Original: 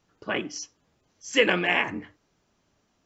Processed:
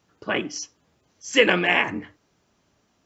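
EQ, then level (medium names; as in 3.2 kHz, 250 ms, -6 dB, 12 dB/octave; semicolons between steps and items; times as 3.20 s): high-pass 44 Hz; +3.5 dB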